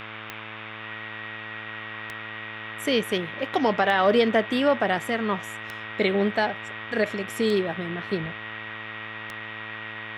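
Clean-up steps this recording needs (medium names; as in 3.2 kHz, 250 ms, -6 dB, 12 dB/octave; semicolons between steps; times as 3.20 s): de-click; de-hum 109.2 Hz, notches 34; band-stop 1.9 kHz, Q 30; noise print and reduce 30 dB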